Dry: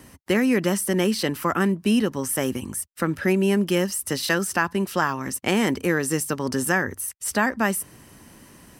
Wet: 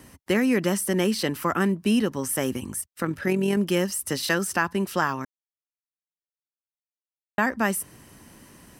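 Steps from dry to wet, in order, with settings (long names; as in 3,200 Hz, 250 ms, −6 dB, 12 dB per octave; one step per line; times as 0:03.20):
0:02.81–0:03.57: amplitude modulation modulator 43 Hz, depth 25%
0:05.25–0:07.38: silence
level −1.5 dB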